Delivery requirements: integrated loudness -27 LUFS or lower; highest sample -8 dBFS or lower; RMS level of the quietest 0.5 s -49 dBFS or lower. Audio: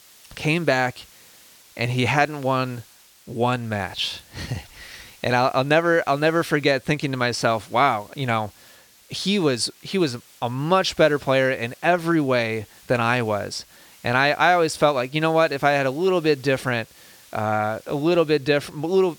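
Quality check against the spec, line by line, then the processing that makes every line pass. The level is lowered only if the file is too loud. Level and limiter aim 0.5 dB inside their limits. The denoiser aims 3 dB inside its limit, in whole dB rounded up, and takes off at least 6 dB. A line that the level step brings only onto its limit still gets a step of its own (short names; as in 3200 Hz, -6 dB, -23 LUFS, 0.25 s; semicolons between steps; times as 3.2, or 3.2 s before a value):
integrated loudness -21.5 LUFS: fail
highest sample -3.5 dBFS: fail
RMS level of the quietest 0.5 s -51 dBFS: OK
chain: gain -6 dB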